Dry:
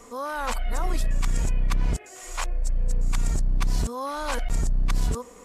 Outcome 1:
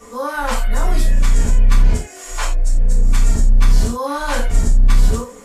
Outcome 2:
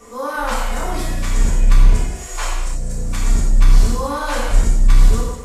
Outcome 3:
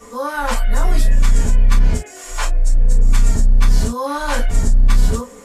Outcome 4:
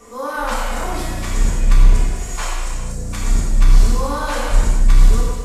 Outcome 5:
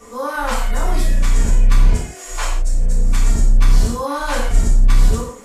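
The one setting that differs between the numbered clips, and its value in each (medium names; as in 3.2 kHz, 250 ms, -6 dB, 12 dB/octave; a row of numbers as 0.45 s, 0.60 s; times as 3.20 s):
gated-style reverb, gate: 120 ms, 350 ms, 80 ms, 530 ms, 200 ms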